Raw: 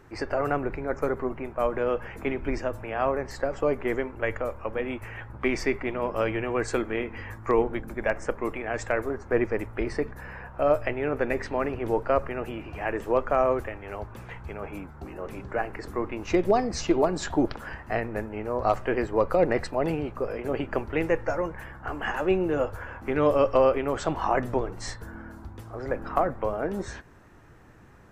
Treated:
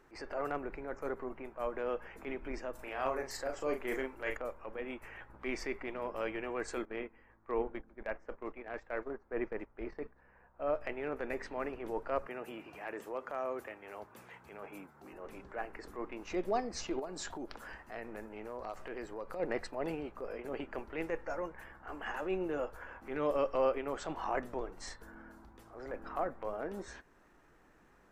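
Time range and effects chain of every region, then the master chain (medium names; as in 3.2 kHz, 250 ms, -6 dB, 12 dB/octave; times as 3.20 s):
2.75–4.37 s: treble shelf 3.7 kHz +11.5 dB + doubling 38 ms -5 dB
6.85–10.81 s: gate -34 dBFS, range -10 dB + distance through air 190 m + tape noise reduction on one side only decoder only
12.26–15.13 s: high-pass 95 Hz 24 dB/octave + treble shelf 6.7 kHz +7.5 dB + compression 2:1, threshold -27 dBFS
16.99–19.40 s: tone controls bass 0 dB, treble +5 dB + compression 4:1, threshold -28 dBFS
whole clip: peaking EQ 100 Hz -15 dB 1.2 oct; transient shaper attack -7 dB, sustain -2 dB; trim -8 dB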